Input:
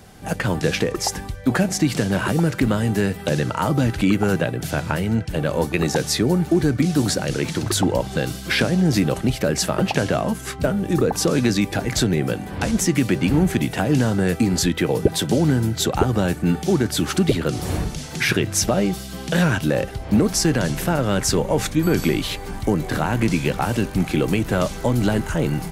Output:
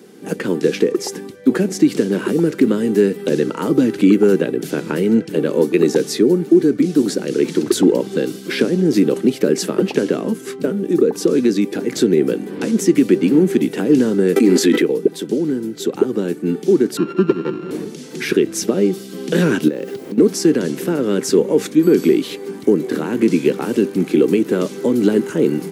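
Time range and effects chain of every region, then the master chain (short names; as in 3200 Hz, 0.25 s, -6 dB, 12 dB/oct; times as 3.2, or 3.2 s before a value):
14.36–14.82 HPF 210 Hz 24 dB/oct + bell 2000 Hz +4.5 dB 0.73 oct + fast leveller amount 100%
16.97–17.71 sample sorter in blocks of 32 samples + air absorption 290 m + comb 5.7 ms, depth 48%
19.68–20.18 LPF 6700 Hz + requantised 8-bit, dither triangular + compressor 16:1, threshold -25 dBFS
whole clip: HPF 210 Hz 24 dB/oct; resonant low shelf 530 Hz +7.5 dB, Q 3; AGC; gain -1.5 dB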